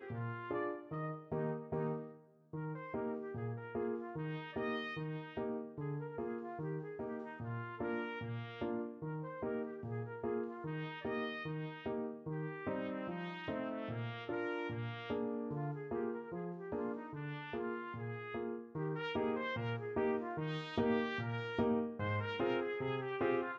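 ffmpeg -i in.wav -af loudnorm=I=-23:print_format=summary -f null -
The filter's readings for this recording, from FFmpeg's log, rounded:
Input Integrated:    -40.2 LUFS
Input True Peak:     -22.4 dBTP
Input LRA:             5.4 LU
Input Threshold:     -50.3 LUFS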